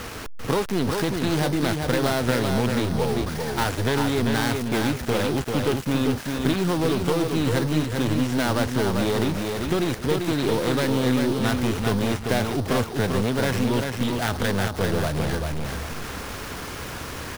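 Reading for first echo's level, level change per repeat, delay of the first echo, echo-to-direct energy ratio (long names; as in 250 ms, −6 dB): −4.5 dB, −11.5 dB, 393 ms, −4.0 dB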